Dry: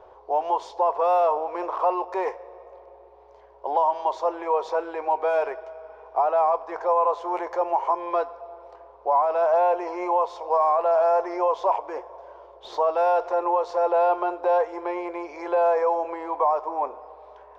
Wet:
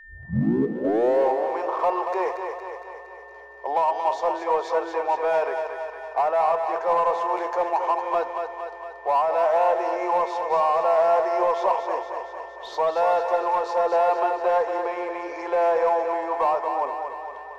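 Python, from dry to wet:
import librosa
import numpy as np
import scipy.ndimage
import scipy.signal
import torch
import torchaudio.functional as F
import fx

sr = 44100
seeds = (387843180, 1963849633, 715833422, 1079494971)

p1 = fx.tape_start_head(x, sr, length_s=1.52)
p2 = fx.high_shelf(p1, sr, hz=5000.0, db=5.0)
p3 = np.clip(10.0 ** (21.0 / 20.0) * p2, -1.0, 1.0) / 10.0 ** (21.0 / 20.0)
p4 = p2 + (p3 * librosa.db_to_amplitude(-6.5))
p5 = p4 + 10.0 ** (-41.0 / 20.0) * np.sin(2.0 * np.pi * 1800.0 * np.arange(len(p4)) / sr)
p6 = fx.hum_notches(p5, sr, base_hz=50, count=7)
p7 = p6 + fx.echo_thinned(p6, sr, ms=231, feedback_pct=63, hz=320.0, wet_db=-6.0, dry=0)
y = p7 * librosa.db_to_amplitude(-3.0)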